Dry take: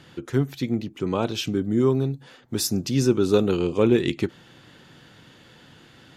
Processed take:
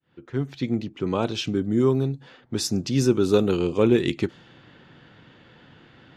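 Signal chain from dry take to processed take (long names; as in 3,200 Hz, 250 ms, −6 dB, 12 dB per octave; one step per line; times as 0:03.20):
fade in at the beginning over 0.64 s
low-pass that shuts in the quiet parts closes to 2,800 Hz, open at −17 dBFS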